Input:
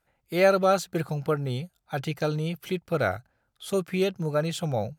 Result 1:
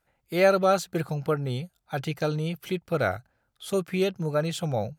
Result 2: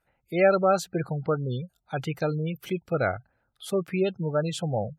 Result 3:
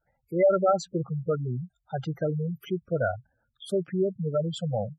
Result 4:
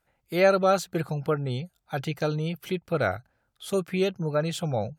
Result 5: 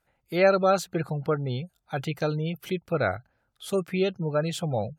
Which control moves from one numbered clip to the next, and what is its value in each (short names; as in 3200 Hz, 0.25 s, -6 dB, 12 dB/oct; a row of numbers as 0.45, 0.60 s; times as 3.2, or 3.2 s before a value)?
spectral gate, under each frame's peak: -60, -25, -10, -45, -35 dB